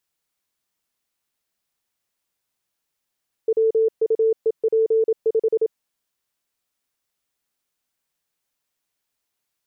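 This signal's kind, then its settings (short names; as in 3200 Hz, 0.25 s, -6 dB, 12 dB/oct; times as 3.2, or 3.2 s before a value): Morse "WUEP5" 27 wpm 445 Hz -14.5 dBFS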